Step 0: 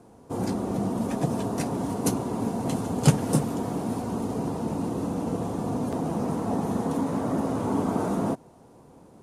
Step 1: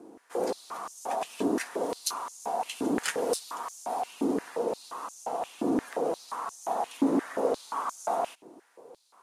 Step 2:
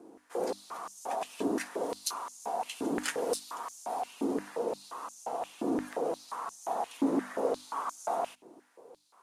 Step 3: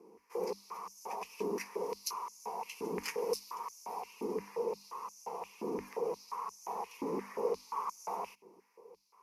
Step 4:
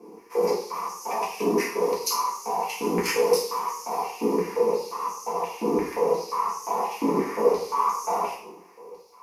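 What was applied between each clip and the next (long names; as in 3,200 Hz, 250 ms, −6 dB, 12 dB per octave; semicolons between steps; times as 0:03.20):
one-sided soft clipper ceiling −13 dBFS; high-pass on a step sequencer 5.7 Hz 310–6,400 Hz; level −2 dB
mains-hum notches 50/100/150/200/250/300 Hz; level −3 dB
EQ curve with evenly spaced ripples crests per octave 0.82, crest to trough 15 dB; level −7 dB
coupled-rooms reverb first 0.53 s, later 2.3 s, from −26 dB, DRR −5.5 dB; level +7.5 dB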